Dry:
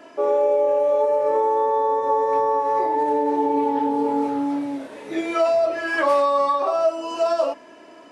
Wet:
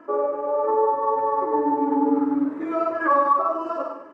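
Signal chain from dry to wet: FFT filter 100 Hz 0 dB, 330 Hz +6 dB, 700 Hz -3 dB, 1.2 kHz +10 dB, 2.4 kHz -9 dB, 3.5 kHz -16 dB; feedback delay 155 ms, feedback 38%, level -5 dB; resampled via 22.05 kHz; delay 253 ms -8.5 dB; granular stretch 0.51×, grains 99 ms; trim -4.5 dB

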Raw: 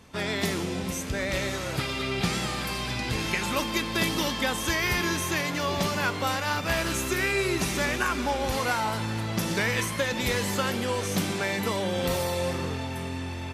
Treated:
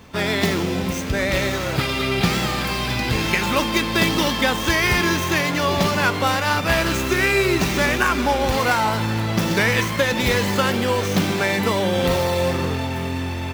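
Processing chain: median filter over 5 samples; treble shelf 11 kHz +3.5 dB; trim +8 dB

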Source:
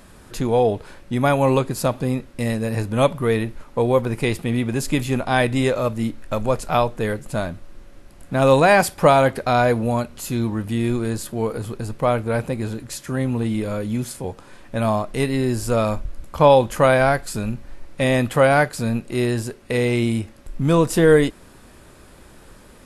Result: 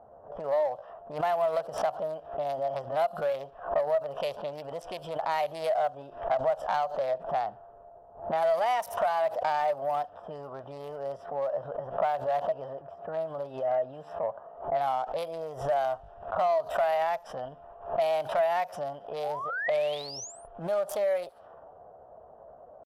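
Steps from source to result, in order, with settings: local Wiener filter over 25 samples; on a send: feedback echo behind a high-pass 75 ms, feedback 36%, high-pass 5.4 kHz, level -20.5 dB; on the sum: painted sound rise, 19.23–20.49 s, 590–8400 Hz -32 dBFS; level-controlled noise filter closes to 460 Hz, open at -16.5 dBFS; high-pass 140 Hz 6 dB/octave; in parallel at -7.5 dB: overload inside the chain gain 19.5 dB; on the sum: dynamic bell 500 Hz, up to +3 dB, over -30 dBFS, Q 3.8; compression 12:1, threshold -28 dBFS, peak gain reduction 21.5 dB; resonant low shelf 360 Hz -13 dB, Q 3; pitch shift +3.5 st; saturation -17.5 dBFS, distortion -22 dB; swell ahead of each attack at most 130 dB/s

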